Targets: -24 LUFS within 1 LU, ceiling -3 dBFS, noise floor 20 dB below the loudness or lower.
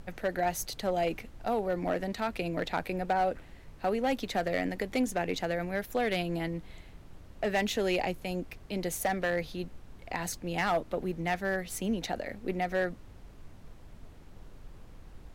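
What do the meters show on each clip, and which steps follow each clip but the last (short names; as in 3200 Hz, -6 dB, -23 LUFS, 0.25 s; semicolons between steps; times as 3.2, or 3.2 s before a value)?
clipped 0.7%; flat tops at -21.5 dBFS; noise floor -51 dBFS; noise floor target -53 dBFS; loudness -32.5 LUFS; peak -21.5 dBFS; loudness target -24.0 LUFS
-> clip repair -21.5 dBFS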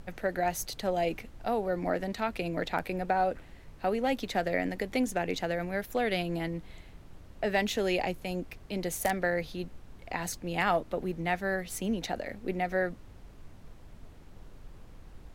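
clipped 0.0%; noise floor -51 dBFS; noise floor target -52 dBFS
-> noise print and reduce 6 dB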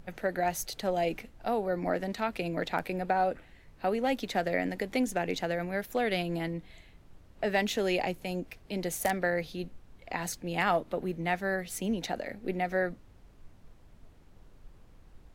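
noise floor -57 dBFS; loudness -32.0 LUFS; peak -13.0 dBFS; loudness target -24.0 LUFS
-> gain +8 dB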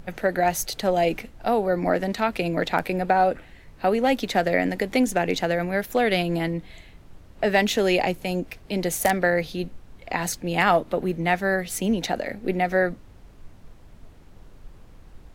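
loudness -24.0 LUFS; peak -5.0 dBFS; noise floor -49 dBFS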